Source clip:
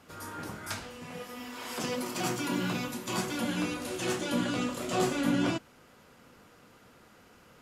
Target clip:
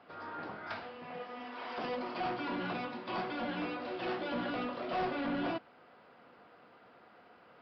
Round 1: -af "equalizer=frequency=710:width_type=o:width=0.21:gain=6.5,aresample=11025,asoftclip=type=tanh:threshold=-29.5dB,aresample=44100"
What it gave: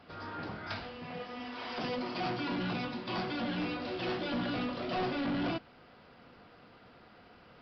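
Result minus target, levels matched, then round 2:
1,000 Hz band −2.5 dB
-af "bandpass=frequency=870:width_type=q:width=0.5:csg=0,equalizer=frequency=710:width_type=o:width=0.21:gain=6.5,aresample=11025,asoftclip=type=tanh:threshold=-29.5dB,aresample=44100"

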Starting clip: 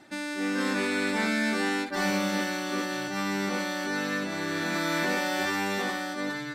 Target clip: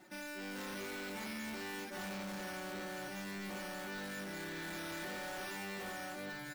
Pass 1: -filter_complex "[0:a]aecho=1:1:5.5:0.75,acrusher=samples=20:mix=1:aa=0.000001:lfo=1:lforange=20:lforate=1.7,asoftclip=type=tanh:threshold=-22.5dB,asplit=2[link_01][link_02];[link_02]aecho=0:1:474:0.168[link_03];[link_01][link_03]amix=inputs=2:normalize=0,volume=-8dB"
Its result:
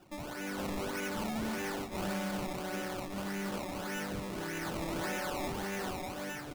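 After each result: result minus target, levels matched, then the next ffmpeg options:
sample-and-hold swept by an LFO: distortion +12 dB; soft clipping: distortion −9 dB
-filter_complex "[0:a]aecho=1:1:5.5:0.75,acrusher=samples=4:mix=1:aa=0.000001:lfo=1:lforange=4:lforate=1.7,asoftclip=type=tanh:threshold=-22.5dB,asplit=2[link_01][link_02];[link_02]aecho=0:1:474:0.168[link_03];[link_01][link_03]amix=inputs=2:normalize=0,volume=-8dB"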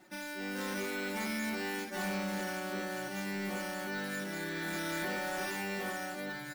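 soft clipping: distortion −9 dB
-filter_complex "[0:a]aecho=1:1:5.5:0.75,acrusher=samples=4:mix=1:aa=0.000001:lfo=1:lforange=4:lforate=1.7,asoftclip=type=tanh:threshold=-33.5dB,asplit=2[link_01][link_02];[link_02]aecho=0:1:474:0.168[link_03];[link_01][link_03]amix=inputs=2:normalize=0,volume=-8dB"

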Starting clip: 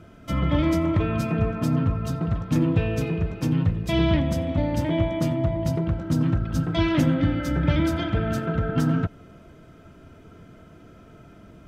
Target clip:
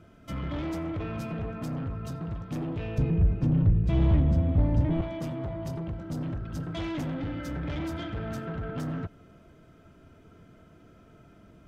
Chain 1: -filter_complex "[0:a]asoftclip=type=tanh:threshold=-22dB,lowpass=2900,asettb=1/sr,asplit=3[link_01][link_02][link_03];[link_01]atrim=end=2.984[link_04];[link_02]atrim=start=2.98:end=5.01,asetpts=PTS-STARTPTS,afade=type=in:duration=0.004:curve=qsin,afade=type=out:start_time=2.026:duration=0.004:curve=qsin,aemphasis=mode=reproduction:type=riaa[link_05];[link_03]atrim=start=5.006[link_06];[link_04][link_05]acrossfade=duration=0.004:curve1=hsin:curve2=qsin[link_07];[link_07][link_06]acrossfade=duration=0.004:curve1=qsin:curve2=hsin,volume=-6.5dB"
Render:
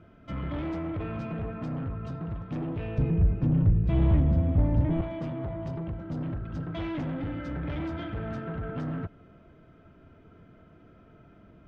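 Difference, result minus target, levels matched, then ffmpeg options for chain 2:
4,000 Hz band −4.5 dB
-filter_complex "[0:a]asoftclip=type=tanh:threshold=-22dB,asettb=1/sr,asplit=3[link_01][link_02][link_03];[link_01]atrim=end=2.984[link_04];[link_02]atrim=start=2.98:end=5.01,asetpts=PTS-STARTPTS,afade=type=in:duration=0.004:curve=qsin,afade=type=out:start_time=2.026:duration=0.004:curve=qsin,aemphasis=mode=reproduction:type=riaa[link_05];[link_03]atrim=start=5.006[link_06];[link_04][link_05]acrossfade=duration=0.004:curve1=hsin:curve2=qsin[link_07];[link_07][link_06]acrossfade=duration=0.004:curve1=qsin:curve2=hsin,volume=-6.5dB"

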